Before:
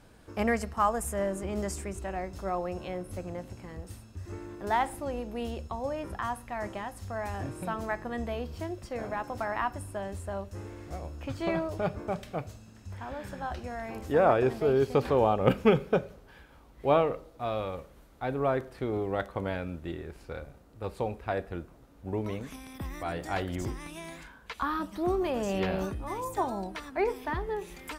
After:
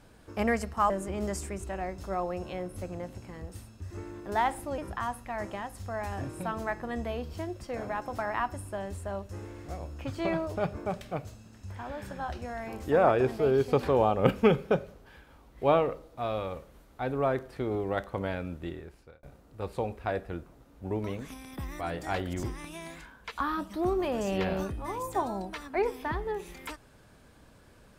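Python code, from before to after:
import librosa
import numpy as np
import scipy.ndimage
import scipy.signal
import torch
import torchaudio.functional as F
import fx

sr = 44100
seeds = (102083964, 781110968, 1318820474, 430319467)

y = fx.edit(x, sr, fx.cut(start_s=0.9, length_s=0.35),
    fx.cut(start_s=5.13, length_s=0.87),
    fx.fade_out_span(start_s=19.86, length_s=0.59), tone=tone)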